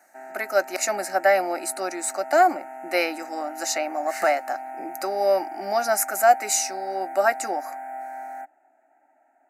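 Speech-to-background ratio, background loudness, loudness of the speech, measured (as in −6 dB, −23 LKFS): 13.0 dB, −37.0 LKFS, −24.0 LKFS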